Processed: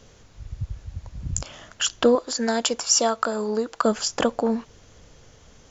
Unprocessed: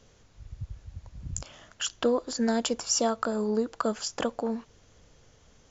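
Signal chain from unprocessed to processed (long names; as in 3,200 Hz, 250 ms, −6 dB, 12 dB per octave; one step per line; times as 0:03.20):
0:02.15–0:03.85: low-shelf EQ 370 Hz −10.5 dB
level +7.5 dB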